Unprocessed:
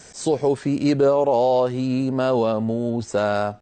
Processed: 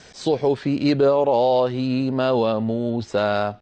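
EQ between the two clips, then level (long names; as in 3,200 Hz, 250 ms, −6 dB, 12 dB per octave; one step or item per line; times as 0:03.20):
low-pass with resonance 3,900 Hz, resonance Q 1.7
0.0 dB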